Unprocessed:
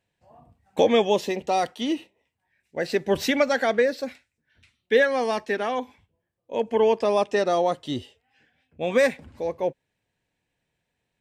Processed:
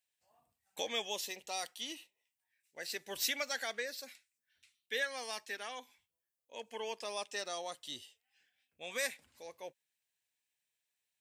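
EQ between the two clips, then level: pre-emphasis filter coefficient 0.97; 0.0 dB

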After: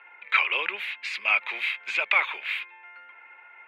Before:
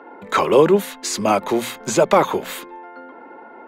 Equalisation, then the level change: resonant high-pass 2.4 kHz, resonance Q 5.6; distance through air 450 m; +2.5 dB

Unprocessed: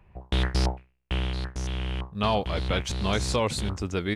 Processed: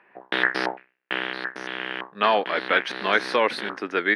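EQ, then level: boxcar filter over 6 samples; high-pass 280 Hz 24 dB/octave; peaking EQ 1.7 kHz +14 dB 0.71 oct; +4.0 dB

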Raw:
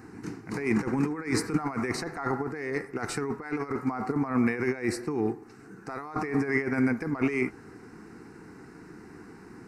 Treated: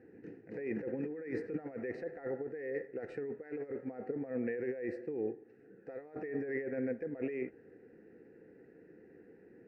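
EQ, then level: vowel filter e; tilt EQ -4 dB/octave; 0.0 dB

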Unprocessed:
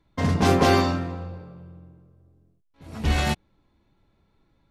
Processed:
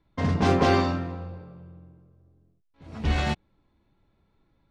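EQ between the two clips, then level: distance through air 84 m; -2.0 dB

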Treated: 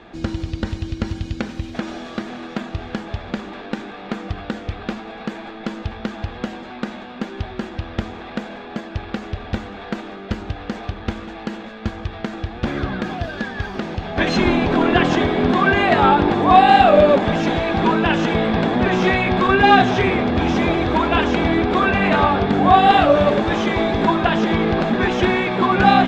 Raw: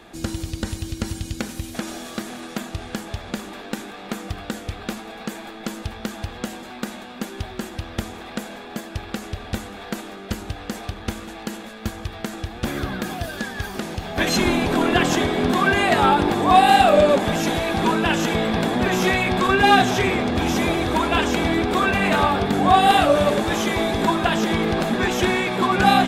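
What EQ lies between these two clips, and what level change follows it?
distance through air 190 m; +3.5 dB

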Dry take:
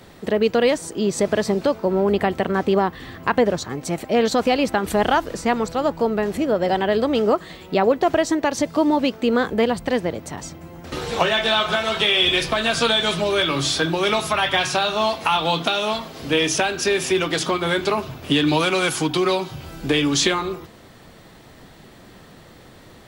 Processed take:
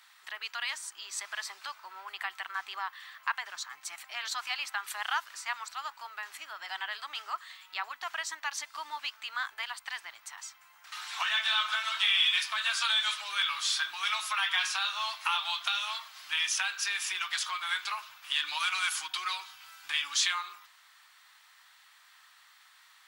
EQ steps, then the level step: inverse Chebyshev high-pass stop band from 540 Hz, stop band 40 dB; -7.0 dB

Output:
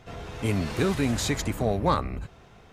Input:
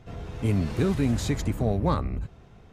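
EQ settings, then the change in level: bass shelf 400 Hz -10 dB; +6.0 dB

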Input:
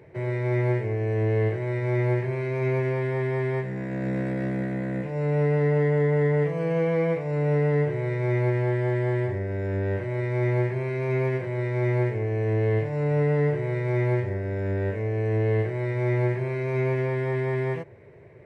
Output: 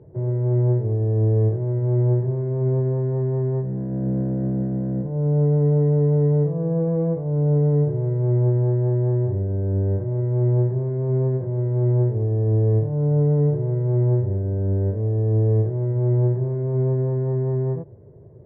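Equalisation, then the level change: Gaussian low-pass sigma 8.2 samples; distance through air 280 m; bass shelf 320 Hz +9 dB; -1.0 dB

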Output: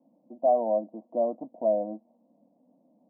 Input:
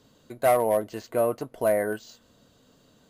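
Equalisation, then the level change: high-pass 190 Hz 24 dB/octave; steep low-pass 810 Hz 36 dB/octave; static phaser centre 420 Hz, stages 6; 0.0 dB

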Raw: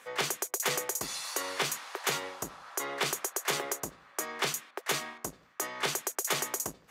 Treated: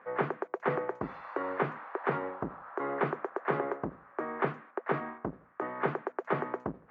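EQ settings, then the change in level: low-pass 1.6 kHz 24 dB/octave; dynamic bell 220 Hz, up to +6 dB, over -51 dBFS, Q 0.75; +2.5 dB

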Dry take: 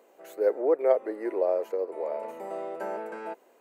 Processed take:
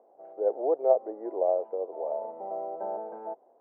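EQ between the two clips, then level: resonant low-pass 750 Hz, resonance Q 4; distance through air 270 m; peaking EQ 130 Hz +10 dB 0.24 oct; -6.5 dB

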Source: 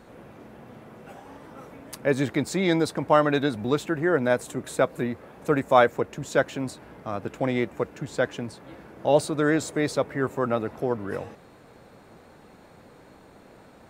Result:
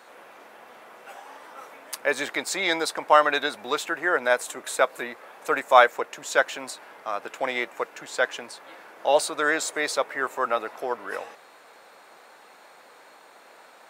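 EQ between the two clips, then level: high-pass 790 Hz 12 dB/octave; +6.0 dB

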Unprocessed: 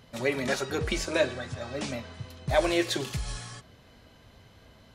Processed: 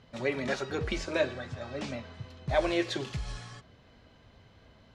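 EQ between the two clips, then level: distance through air 91 m; -2.5 dB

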